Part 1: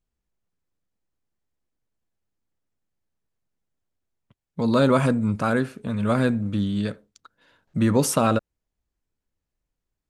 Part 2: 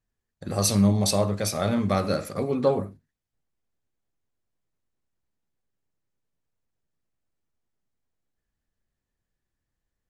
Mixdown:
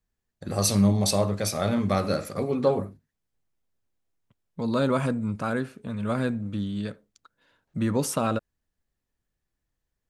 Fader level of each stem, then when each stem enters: −5.5, −0.5 decibels; 0.00, 0.00 seconds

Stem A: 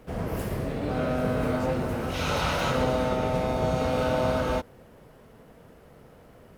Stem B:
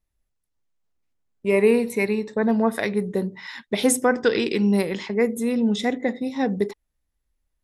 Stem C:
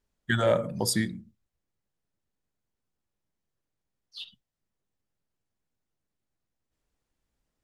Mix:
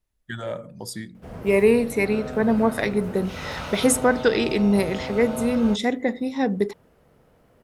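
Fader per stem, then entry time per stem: −6.5, +0.5, −7.5 decibels; 1.15, 0.00, 0.00 seconds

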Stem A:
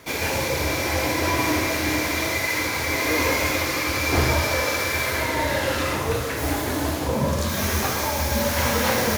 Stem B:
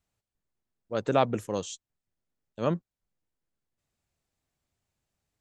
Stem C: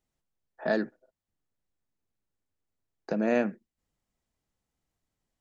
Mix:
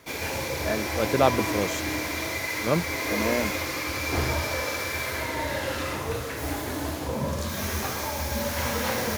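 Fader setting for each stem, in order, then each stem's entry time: −6.0, +3.0, −2.5 decibels; 0.00, 0.05, 0.00 seconds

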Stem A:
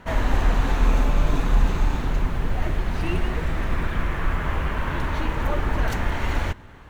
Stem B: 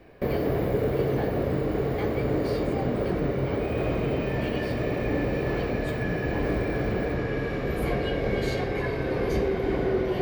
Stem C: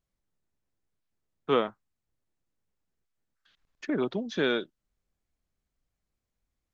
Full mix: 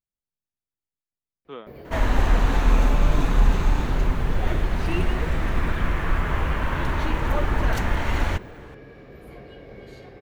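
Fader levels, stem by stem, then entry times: +1.0, −16.0, −14.0 decibels; 1.85, 1.45, 0.00 seconds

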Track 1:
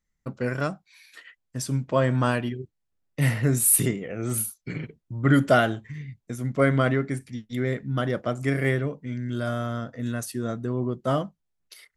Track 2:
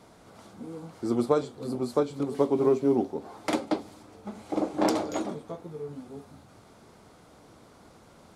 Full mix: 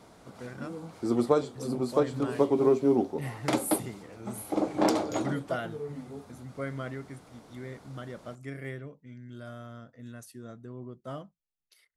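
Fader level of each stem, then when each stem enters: −15.0, 0.0 decibels; 0.00, 0.00 seconds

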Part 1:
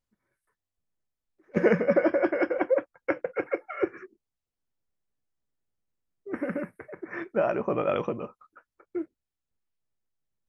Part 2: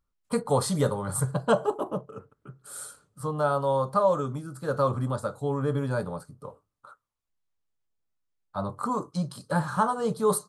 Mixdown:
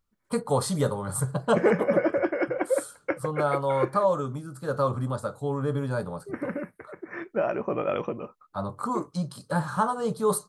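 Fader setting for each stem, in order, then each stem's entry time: −1.0, −0.5 decibels; 0.00, 0.00 seconds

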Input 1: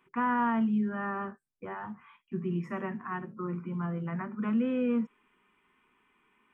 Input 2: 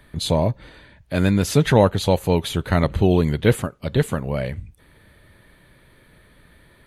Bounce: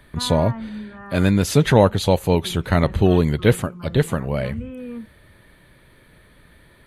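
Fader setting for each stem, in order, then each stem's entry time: −5.0, +1.0 decibels; 0.00, 0.00 seconds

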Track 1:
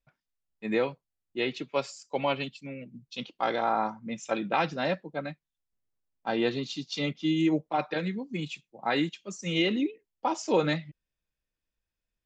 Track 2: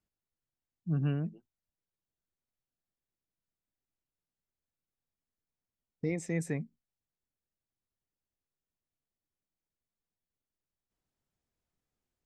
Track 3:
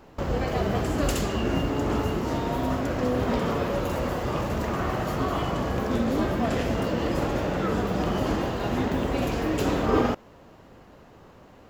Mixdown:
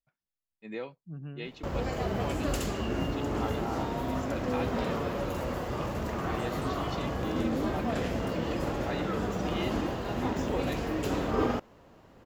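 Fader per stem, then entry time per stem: −11.0, −11.0, −5.5 decibels; 0.00, 0.20, 1.45 seconds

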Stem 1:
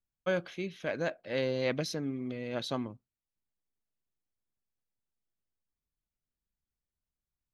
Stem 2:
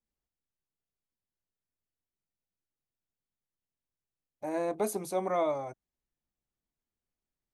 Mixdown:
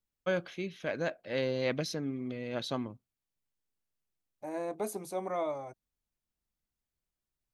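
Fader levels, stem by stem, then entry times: −0.5, −4.5 decibels; 0.00, 0.00 seconds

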